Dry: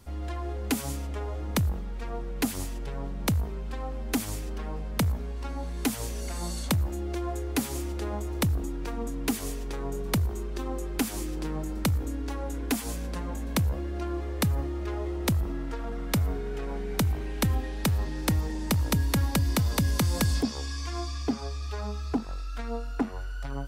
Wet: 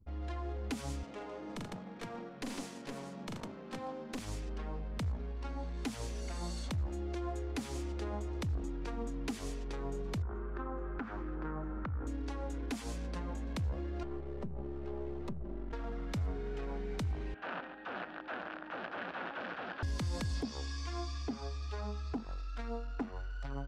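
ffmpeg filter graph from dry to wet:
-filter_complex "[0:a]asettb=1/sr,asplit=3[a][b][c];[a]atrim=end=1.034[d];[b]atrim=start=1.03:end=4.19,asetpts=PTS-STARTPTS,afade=t=in:d=0.004:c=qsin,afade=t=out:st=3.156:d=0.004:c=qsin,highpass=f=160:w=0.5412,highpass=f=160:w=1.3066,aeval=exprs='clip(val(0),-1,0.0282)':c=same,aecho=1:1:42|81|155|449|467:0.501|0.251|0.355|0.224|0.335,atrim=end_sample=139356[e];[c]atrim=start=4.186[f];[d][e]acrossfade=d=0.004:c1=hsin:c2=qsin[g];[g][f]acrossfade=d=0.004:c1=qsin:c2=hsin,asettb=1/sr,asplit=3[h][i][j];[h]atrim=end=10.224[k];[i]atrim=start=10.22:end=12.07,asetpts=PTS-STARTPTS,afade=t=in:d=0.004:c=qsin,afade=t=out:st=1.846:d=0.004:c=qsin,acompressor=threshold=-30dB:ratio=2:attack=3.2:release=140:knee=1:detection=peak,lowpass=f=1.4k:t=q:w=3.3[l];[j]atrim=start=12.066[m];[k][l]acrossfade=d=0.004:c1=hsin:c2=qsin[n];[n][m]acrossfade=d=0.004:c1=qsin:c2=hsin,asettb=1/sr,asplit=3[o][p][q];[o]atrim=end=14.034[r];[p]atrim=start=14.03:end=15.73,asetpts=PTS-STARTPTS,afade=t=in:d=0.004:c=qsin,afade=t=out:st=1.696:d=0.004:c=qsin,acrossover=split=150|790[s][t][u];[s]acompressor=threshold=-31dB:ratio=4[v];[t]acompressor=threshold=-33dB:ratio=4[w];[u]acompressor=threshold=-55dB:ratio=4[x];[v][w][x]amix=inputs=3:normalize=0,aeval=exprs='clip(val(0),-1,0.00891)':c=same,aecho=1:1:5.1:0.64,atrim=end_sample=74970[y];[q]atrim=start=15.726[z];[r][y]acrossfade=d=0.004:c1=hsin:c2=qsin[aa];[aa][z]acrossfade=d=0.004:c1=qsin:c2=hsin,asettb=1/sr,asplit=3[ab][ac][ad];[ab]atrim=end=17.344[ae];[ac]atrim=start=17.34:end=19.83,asetpts=PTS-STARTPTS,afade=t=in:d=0.004:c=qsin,afade=t=out:st=2.486:d=0.004:c=qsin,aeval=exprs='(mod(17.8*val(0)+1,2)-1)/17.8':c=same,highpass=390,equalizer=f=420:t=q:w=4:g=-10,equalizer=f=1k:t=q:w=4:g=-4,equalizer=f=1.5k:t=q:w=4:g=6,equalizer=f=2.1k:t=q:w=4:g=-8,lowpass=f=2.6k:w=0.5412,lowpass=f=2.6k:w=1.3066,aecho=1:1:139:0.299,atrim=end_sample=109809[af];[ad]atrim=start=19.826[ag];[ae][af]acrossfade=d=0.004:c1=hsin:c2=qsin[ah];[ah][ag]acrossfade=d=0.004:c1=qsin:c2=hsin,lowpass=6.4k,anlmdn=0.00398,alimiter=limit=-22.5dB:level=0:latency=1:release=110,volume=-6dB"

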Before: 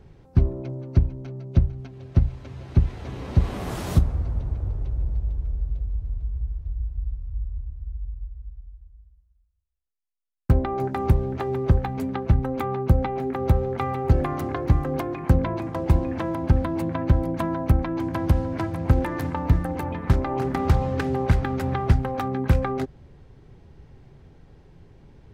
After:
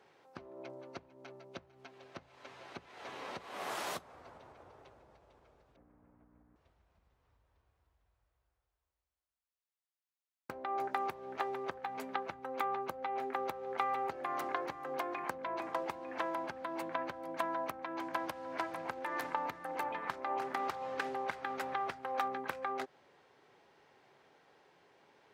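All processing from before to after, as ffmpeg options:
-filter_complex "[0:a]asettb=1/sr,asplit=3[a][b][c];[a]atrim=end=5.764[d];[b]atrim=start=5.76:end=6.56,asetpts=PTS-STARTPTS,afade=t=in:d=0.004:c=qsin,afade=t=out:st=0.796:d=0.004:c=qsin,lowpass=f=1.9k:w=0.5412,lowpass=f=1.9k:w=1.3066,aeval=exprs='val(0)+0.0141*(sin(2*PI*60*n/s)+sin(2*PI*2*60*n/s)/2+sin(2*PI*3*60*n/s)/3+sin(2*PI*4*60*n/s)/4+sin(2*PI*5*60*n/s)/5)':c=same[e];[c]atrim=start=6.556[f];[d][e]acrossfade=d=0.004:c1=hsin:c2=qsin[g];[g][f]acrossfade=d=0.004:c1=qsin:c2=hsin,acompressor=threshold=-25dB:ratio=6,highpass=720,highshelf=f=4.5k:g=-5.5"

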